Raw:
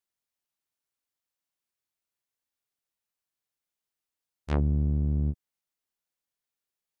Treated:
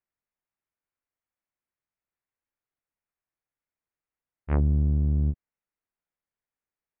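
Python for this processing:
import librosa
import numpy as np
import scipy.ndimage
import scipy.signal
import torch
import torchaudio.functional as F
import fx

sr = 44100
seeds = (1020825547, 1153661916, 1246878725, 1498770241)

y = scipy.signal.sosfilt(scipy.signal.butter(6, 2400.0, 'lowpass', fs=sr, output='sos'), x)
y = fx.low_shelf(y, sr, hz=78.0, db=6.5)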